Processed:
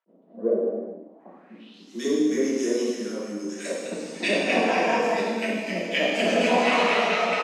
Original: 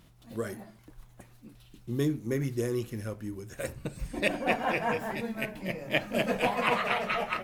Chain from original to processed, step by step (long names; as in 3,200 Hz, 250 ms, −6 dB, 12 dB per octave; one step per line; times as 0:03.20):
Butterworth high-pass 180 Hz 96 dB per octave
parametric band 360 Hz +2 dB 1.7 octaves
multiband delay without the direct sound highs, lows 60 ms, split 1,400 Hz
reverb whose tail is shaped and stops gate 470 ms falling, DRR −6 dB
low-pass filter sweep 550 Hz → 6,200 Hz, 0:01.10–0:01.91
level that may rise only so fast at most 590 dB per second